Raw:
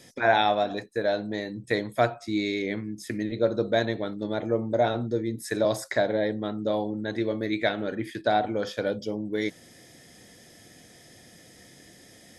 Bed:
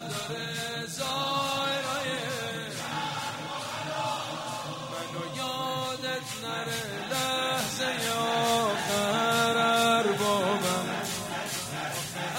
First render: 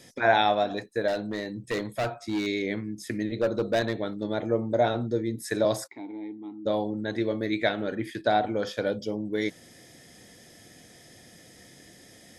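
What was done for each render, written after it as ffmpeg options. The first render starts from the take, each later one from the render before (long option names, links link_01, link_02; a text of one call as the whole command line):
ffmpeg -i in.wav -filter_complex "[0:a]asettb=1/sr,asplit=3[link_01][link_02][link_03];[link_01]atrim=end=1.084[link_04];[link_02]atrim=start=1.08:end=2.47,asetpts=PTS-STARTPTS,afade=type=in:duration=0.004:curve=qsin,afade=type=out:start_time=1.386:duration=0.004:curve=qsin,asoftclip=type=hard:threshold=-24dB[link_05];[link_03]atrim=start=2.466[link_06];[link_04][link_05]acrossfade=duration=0.004:curve1=hsin:curve2=qsin[link_07];[link_07][link_06]acrossfade=duration=0.004:curve1=qsin:curve2=hsin,asettb=1/sr,asplit=3[link_08][link_09][link_10];[link_08]atrim=end=3.384[link_11];[link_09]atrim=start=3.38:end=3.94,asetpts=PTS-STARTPTS,afade=type=in:duration=0.004:curve=qsin,afade=type=out:start_time=0.556:duration=0.004:curve=qsin,asoftclip=type=hard:threshold=-19dB[link_12];[link_10]atrim=start=3.936[link_13];[link_11][link_12]acrossfade=duration=0.004:curve1=hsin:curve2=qsin[link_14];[link_14][link_13]acrossfade=duration=0.004:curve1=qsin:curve2=hsin,asplit=3[link_15][link_16][link_17];[link_15]afade=type=out:start_time=5.86:duration=0.02[link_18];[link_16]asplit=3[link_19][link_20][link_21];[link_19]bandpass=frequency=300:width_type=q:width=8,volume=0dB[link_22];[link_20]bandpass=frequency=870:width_type=q:width=8,volume=-6dB[link_23];[link_21]bandpass=frequency=2240:width_type=q:width=8,volume=-9dB[link_24];[link_22][link_23][link_24]amix=inputs=3:normalize=0,afade=type=in:start_time=5.86:duration=0.02,afade=type=out:start_time=6.65:duration=0.02[link_25];[link_17]afade=type=in:start_time=6.65:duration=0.02[link_26];[link_18][link_25][link_26]amix=inputs=3:normalize=0" out.wav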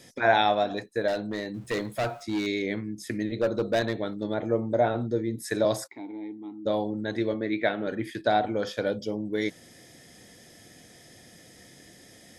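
ffmpeg -i in.wav -filter_complex "[0:a]asettb=1/sr,asplit=3[link_01][link_02][link_03];[link_01]atrim=end=1.544[link_04];[link_02]atrim=start=1.54:end=2.23,asetpts=PTS-STARTPTS,afade=type=in:duration=0.004:curve=qsin,afade=type=out:start_time=0.686:duration=0.004:curve=qsin,aeval=exprs='val(0)+0.5*0.00335*sgn(val(0))':channel_layout=same[link_05];[link_03]atrim=start=2.226[link_06];[link_04][link_05]acrossfade=duration=0.004:curve1=hsin:curve2=qsin[link_07];[link_07][link_06]acrossfade=duration=0.004:curve1=qsin:curve2=hsin,asettb=1/sr,asplit=3[link_08][link_09][link_10];[link_08]atrim=end=4.344[link_11];[link_09]atrim=start=4.34:end=5.38,asetpts=PTS-STARTPTS,afade=type=in:duration=0.004:curve=qsin,afade=type=out:start_time=1.036:duration=0.004:curve=qsin,acrossover=split=2700[link_12][link_13];[link_13]acompressor=threshold=-54dB:ratio=4:attack=1:release=60[link_14];[link_12][link_14]amix=inputs=2:normalize=0[link_15];[link_10]atrim=start=5.376[link_16];[link_11][link_15]acrossfade=duration=0.004:curve1=hsin:curve2=qsin[link_17];[link_17][link_16]acrossfade=duration=0.004:curve1=qsin:curve2=hsin,asettb=1/sr,asplit=3[link_18][link_19][link_20];[link_18]atrim=end=7.344[link_21];[link_19]atrim=start=7.34:end=7.87,asetpts=PTS-STARTPTS,afade=type=in:duration=0.004:curve=qsin,afade=type=out:start_time=0.526:duration=0.004:curve=qsin,highpass=130,lowpass=3000[link_22];[link_20]atrim=start=7.866[link_23];[link_21][link_22]acrossfade=duration=0.004:curve1=hsin:curve2=qsin[link_24];[link_24][link_23]acrossfade=duration=0.004:curve1=qsin:curve2=hsin" out.wav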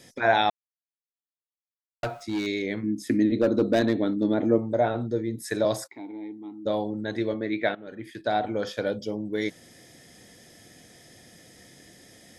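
ffmpeg -i in.wav -filter_complex "[0:a]asettb=1/sr,asplit=3[link_01][link_02][link_03];[link_01]atrim=end=2.834[link_04];[link_02]atrim=start=2.83:end=4.58,asetpts=PTS-STARTPTS,afade=type=in:duration=0.004:curve=qsin,afade=type=out:start_time=1.746:duration=0.004:curve=qsin,equalizer=frequency=270:width_type=o:width=0.77:gain=13.5[link_05];[link_03]atrim=start=4.576[link_06];[link_04][link_05]acrossfade=duration=0.004:curve1=hsin:curve2=qsin[link_07];[link_07][link_06]acrossfade=duration=0.004:curve1=qsin:curve2=hsin,asplit=4[link_08][link_09][link_10][link_11];[link_08]atrim=end=0.5,asetpts=PTS-STARTPTS,afade=type=out:start_time=0.496:duration=0.004:curve=hsin[link_12];[link_09]atrim=start=0.5:end=2.03,asetpts=PTS-STARTPTS,volume=0[link_13];[link_10]atrim=start=2.03:end=7.75,asetpts=PTS-STARTPTS,afade=type=in:duration=0.004:curve=hsin,afade=type=out:start_time=5.716:duration=0.004:curve=hsin:silence=0.16788[link_14];[link_11]atrim=start=7.75,asetpts=PTS-STARTPTS,afade=type=in:duration=0.8:silence=0.16788[link_15];[link_12][link_13][link_14][link_15]concat=n=4:v=0:a=1" out.wav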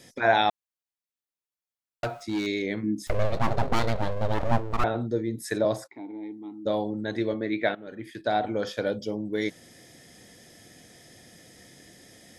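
ffmpeg -i in.wav -filter_complex "[0:a]asettb=1/sr,asplit=3[link_01][link_02][link_03];[link_01]atrim=end=3.074[link_04];[link_02]atrim=start=3.07:end=4.84,asetpts=PTS-STARTPTS,afade=type=in:duration=0.004:curve=qsin,afade=type=out:start_time=1.766:duration=0.004:curve=qsin,aeval=exprs='abs(val(0))':channel_layout=same[link_05];[link_03]atrim=start=4.836[link_06];[link_04][link_05]acrossfade=duration=0.004:curve1=hsin:curve2=qsin[link_07];[link_07][link_06]acrossfade=duration=0.004:curve1=qsin:curve2=hsin,asettb=1/sr,asplit=3[link_08][link_09][link_10];[link_08]atrim=end=5.584[link_11];[link_09]atrim=start=5.58:end=6.23,asetpts=PTS-STARTPTS,afade=type=in:duration=0.004:curve=qsin,afade=type=out:start_time=0.646:duration=0.004:curve=qsin,highshelf=frequency=2700:gain=-9[link_12];[link_10]atrim=start=6.226[link_13];[link_11][link_12]acrossfade=duration=0.004:curve1=hsin:curve2=qsin[link_14];[link_14][link_13]acrossfade=duration=0.004:curve1=qsin:curve2=hsin" out.wav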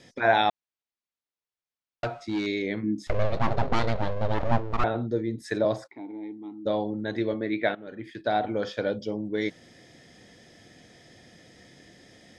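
ffmpeg -i in.wav -af "lowpass=5100" out.wav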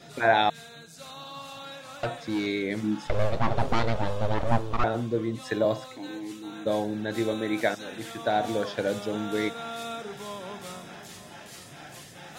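ffmpeg -i in.wav -i bed.wav -filter_complex "[1:a]volume=-12.5dB[link_01];[0:a][link_01]amix=inputs=2:normalize=0" out.wav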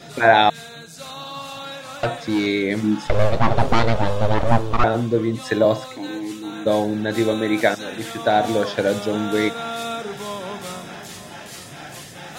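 ffmpeg -i in.wav -af "volume=8dB,alimiter=limit=-2dB:level=0:latency=1" out.wav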